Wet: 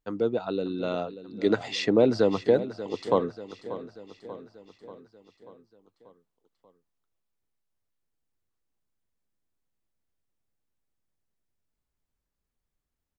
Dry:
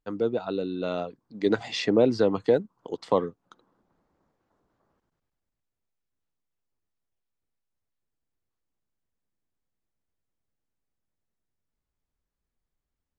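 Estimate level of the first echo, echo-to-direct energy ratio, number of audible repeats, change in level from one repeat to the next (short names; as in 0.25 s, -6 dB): -14.0 dB, -12.5 dB, 5, -5.0 dB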